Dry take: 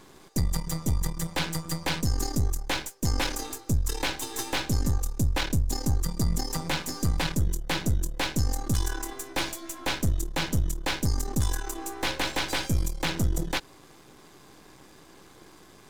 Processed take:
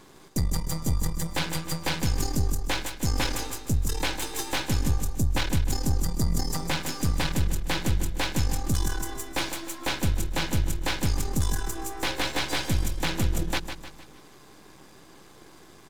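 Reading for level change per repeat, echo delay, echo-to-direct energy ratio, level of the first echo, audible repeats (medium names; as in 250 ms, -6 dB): -7.0 dB, 153 ms, -8.0 dB, -9.0 dB, 4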